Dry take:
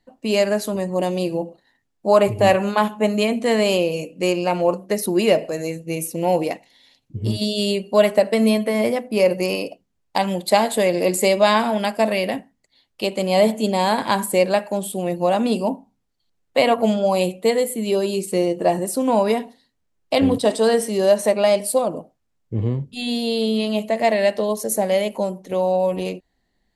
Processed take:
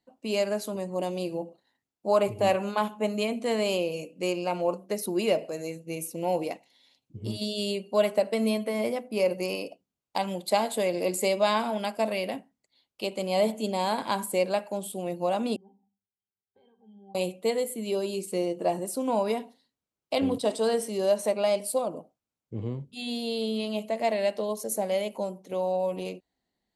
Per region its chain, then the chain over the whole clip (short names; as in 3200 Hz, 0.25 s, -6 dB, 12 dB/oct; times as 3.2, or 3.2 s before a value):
15.56–17.15 compressor 2.5:1, threshold -39 dBFS + octave resonator G, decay 0.21 s
whole clip: HPF 150 Hz 6 dB/oct; bell 1800 Hz -7.5 dB 0.21 oct; gain -8 dB